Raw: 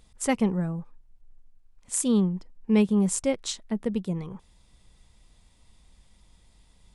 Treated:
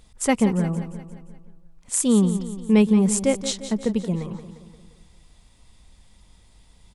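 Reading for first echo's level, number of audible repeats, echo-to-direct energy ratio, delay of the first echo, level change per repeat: −12.0 dB, 5, −10.5 dB, 175 ms, −5.5 dB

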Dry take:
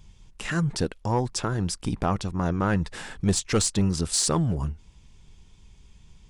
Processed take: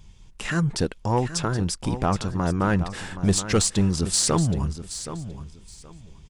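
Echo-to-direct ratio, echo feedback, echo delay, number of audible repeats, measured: −12.0 dB, 21%, 773 ms, 2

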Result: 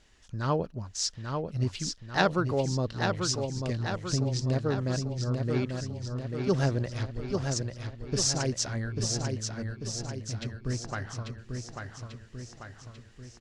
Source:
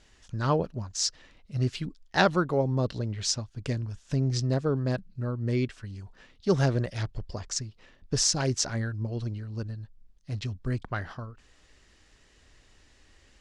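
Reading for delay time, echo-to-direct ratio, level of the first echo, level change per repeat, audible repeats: 842 ms, −3.5 dB, −5.0 dB, −5.0 dB, 6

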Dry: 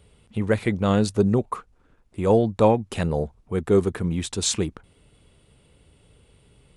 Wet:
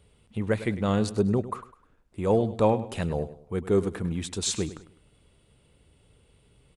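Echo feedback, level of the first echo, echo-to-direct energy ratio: 35%, −14.5 dB, −14.0 dB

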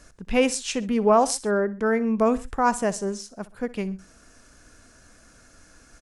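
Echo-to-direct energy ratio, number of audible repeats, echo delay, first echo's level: −17.5 dB, 2, 63 ms, −18.5 dB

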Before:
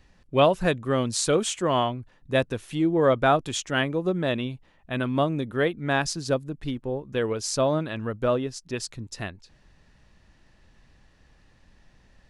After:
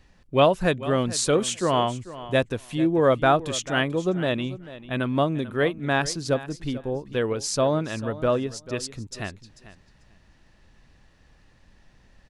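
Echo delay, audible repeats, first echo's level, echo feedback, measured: 442 ms, 2, −16.0 dB, 16%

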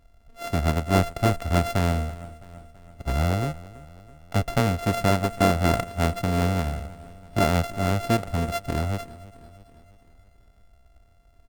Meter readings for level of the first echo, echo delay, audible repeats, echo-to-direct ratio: −19.5 dB, 331 ms, 4, −18.0 dB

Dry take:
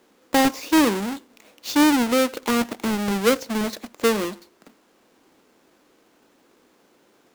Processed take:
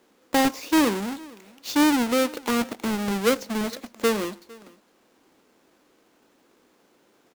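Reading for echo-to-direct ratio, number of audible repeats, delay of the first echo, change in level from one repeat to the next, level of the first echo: −23.5 dB, 1, 455 ms, repeats not evenly spaced, −23.5 dB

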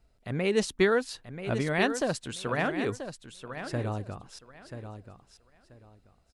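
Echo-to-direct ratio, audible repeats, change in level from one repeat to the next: −10.0 dB, 2, −13.0 dB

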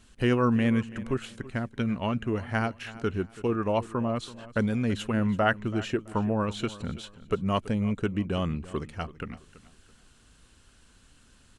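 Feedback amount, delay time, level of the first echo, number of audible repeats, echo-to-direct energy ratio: 30%, 331 ms, −17.5 dB, 2, −17.0 dB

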